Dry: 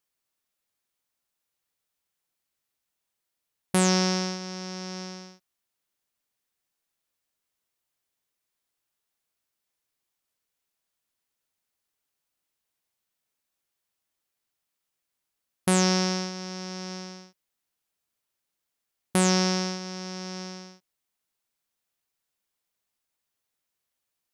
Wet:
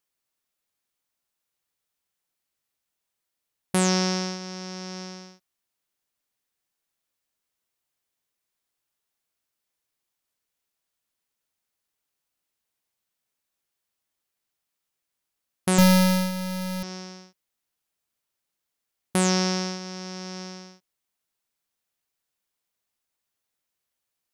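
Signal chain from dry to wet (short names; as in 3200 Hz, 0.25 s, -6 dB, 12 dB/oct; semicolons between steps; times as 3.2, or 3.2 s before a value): 15.78–16.83 half-waves squared off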